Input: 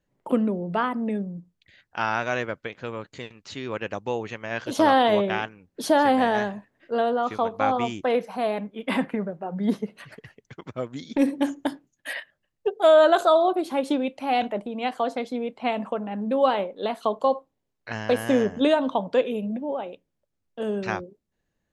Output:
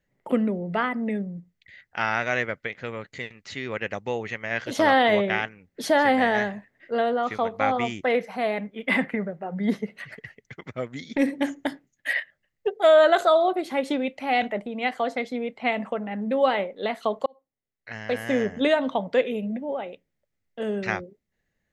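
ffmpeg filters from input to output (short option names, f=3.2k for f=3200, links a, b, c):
-filter_complex "[0:a]asplit=2[a][b];[a]atrim=end=17.26,asetpts=PTS-STARTPTS,afade=t=out:st=17.256:d=0.004:c=hsin[c];[b]atrim=start=17.26,asetpts=PTS-STARTPTS,afade=t=in:d=1.47[d];[c][d]concat=n=2:v=0:a=1,equalizer=f=315:t=o:w=0.33:g=-4,equalizer=f=1k:t=o:w=0.33:g=-5,equalizer=f=2k:t=o:w=0.33:g=11,equalizer=f=10k:t=o:w=0.33:g=-5"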